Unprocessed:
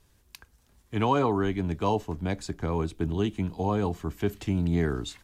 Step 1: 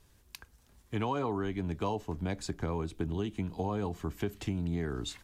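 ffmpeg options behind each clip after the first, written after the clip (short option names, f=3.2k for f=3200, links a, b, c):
-af "acompressor=threshold=-30dB:ratio=4"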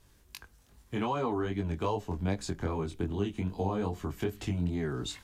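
-af "flanger=delay=19.5:depth=3.9:speed=2.5,volume=4.5dB"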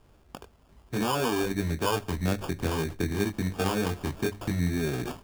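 -af "acrusher=samples=22:mix=1:aa=0.000001,bandreject=f=50:t=h:w=6,bandreject=f=100:t=h:w=6,volume=4dB"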